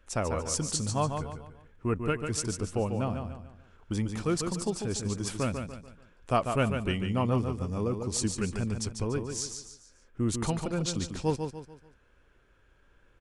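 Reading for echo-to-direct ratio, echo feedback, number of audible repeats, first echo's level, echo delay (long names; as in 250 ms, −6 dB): −6.0 dB, 38%, 4, −6.5 dB, 145 ms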